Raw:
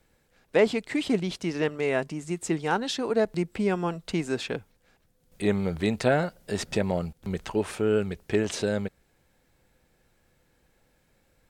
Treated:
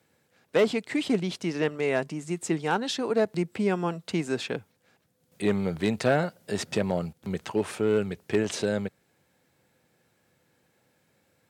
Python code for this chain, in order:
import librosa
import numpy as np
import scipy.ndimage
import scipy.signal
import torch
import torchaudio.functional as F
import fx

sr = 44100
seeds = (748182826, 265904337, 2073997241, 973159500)

y = np.clip(10.0 ** (15.5 / 20.0) * x, -1.0, 1.0) / 10.0 ** (15.5 / 20.0)
y = scipy.signal.sosfilt(scipy.signal.butter(4, 98.0, 'highpass', fs=sr, output='sos'), y)